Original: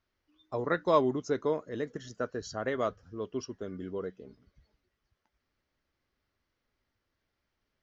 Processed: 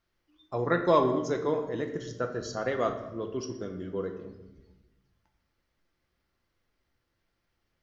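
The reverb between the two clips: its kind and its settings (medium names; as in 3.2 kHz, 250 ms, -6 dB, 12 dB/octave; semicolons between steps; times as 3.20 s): simulated room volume 440 m³, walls mixed, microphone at 0.8 m; trim +1.5 dB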